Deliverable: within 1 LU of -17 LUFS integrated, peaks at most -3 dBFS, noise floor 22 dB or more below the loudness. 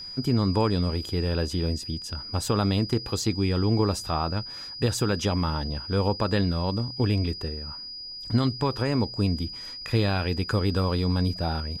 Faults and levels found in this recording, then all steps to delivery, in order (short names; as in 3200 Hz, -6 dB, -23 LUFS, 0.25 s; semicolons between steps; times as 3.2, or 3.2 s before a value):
steady tone 4900 Hz; tone level -36 dBFS; loudness -26.5 LUFS; peak -11.0 dBFS; loudness target -17.0 LUFS
-> notch 4900 Hz, Q 30; gain +9.5 dB; limiter -3 dBFS